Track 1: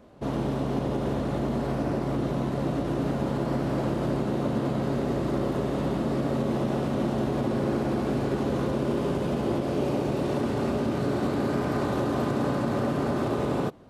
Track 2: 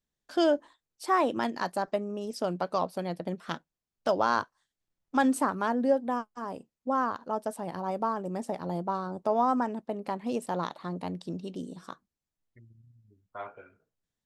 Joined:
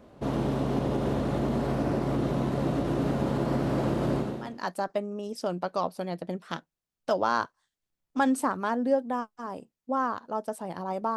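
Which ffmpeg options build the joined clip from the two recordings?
-filter_complex "[0:a]apad=whole_dur=11.16,atrim=end=11.16,atrim=end=4.68,asetpts=PTS-STARTPTS[s0];[1:a]atrim=start=1.14:end=8.14,asetpts=PTS-STARTPTS[s1];[s0][s1]acrossfade=d=0.52:c1=qua:c2=qua"

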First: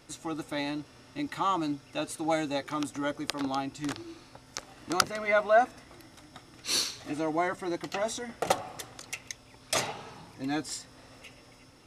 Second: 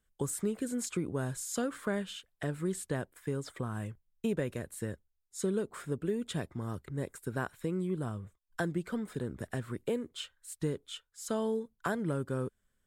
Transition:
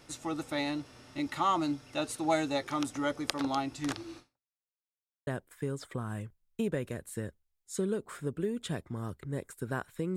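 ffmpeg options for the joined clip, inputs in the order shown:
-filter_complex "[0:a]apad=whole_dur=10.16,atrim=end=10.16,asplit=2[s0][s1];[s0]atrim=end=4.62,asetpts=PTS-STARTPTS,afade=t=out:st=4.18:d=0.44:c=exp[s2];[s1]atrim=start=4.62:end=5.27,asetpts=PTS-STARTPTS,volume=0[s3];[1:a]atrim=start=2.92:end=7.81,asetpts=PTS-STARTPTS,afade=t=in:d=0.004:c=hsin[s4];[s2][s3][s4]concat=n=3:v=0:a=1"

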